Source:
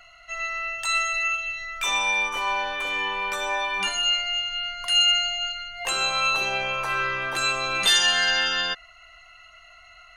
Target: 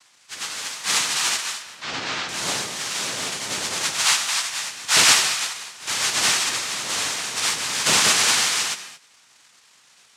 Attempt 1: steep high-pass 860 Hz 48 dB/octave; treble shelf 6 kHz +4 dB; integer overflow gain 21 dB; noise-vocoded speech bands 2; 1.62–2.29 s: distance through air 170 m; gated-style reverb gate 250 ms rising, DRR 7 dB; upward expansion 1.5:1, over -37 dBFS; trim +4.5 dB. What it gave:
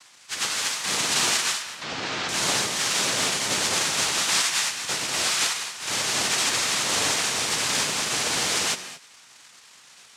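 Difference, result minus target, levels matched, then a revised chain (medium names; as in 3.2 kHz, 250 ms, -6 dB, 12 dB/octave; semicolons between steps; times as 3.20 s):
integer overflow: distortion +16 dB
steep high-pass 860 Hz 48 dB/octave; treble shelf 6 kHz +4 dB; integer overflow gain 12.5 dB; noise-vocoded speech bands 2; 1.62–2.29 s: distance through air 170 m; gated-style reverb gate 250 ms rising, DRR 7 dB; upward expansion 1.5:1, over -37 dBFS; trim +4.5 dB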